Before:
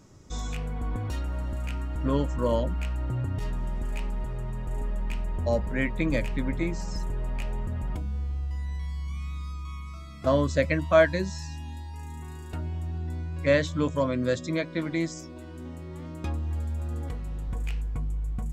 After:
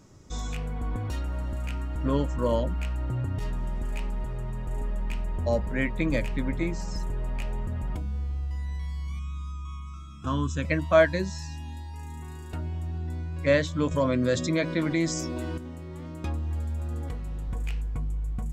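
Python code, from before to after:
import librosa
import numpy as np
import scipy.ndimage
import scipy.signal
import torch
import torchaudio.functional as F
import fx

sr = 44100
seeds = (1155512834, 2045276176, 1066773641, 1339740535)

y = fx.fixed_phaser(x, sr, hz=3000.0, stages=8, at=(9.19, 10.65))
y = fx.env_flatten(y, sr, amount_pct=50, at=(13.91, 15.58))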